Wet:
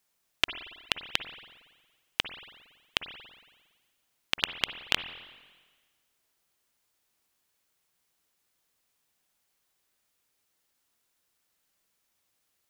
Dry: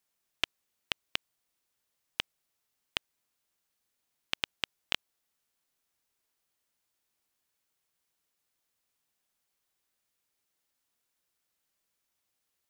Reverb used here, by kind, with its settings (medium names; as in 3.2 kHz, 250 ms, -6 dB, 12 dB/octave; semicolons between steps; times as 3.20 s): spring tank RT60 1.4 s, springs 46/57 ms, chirp 35 ms, DRR 9 dB; trim +5 dB